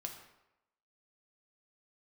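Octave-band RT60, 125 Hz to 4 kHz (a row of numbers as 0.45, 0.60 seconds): 0.75, 0.80, 0.90, 0.90, 0.80, 0.65 seconds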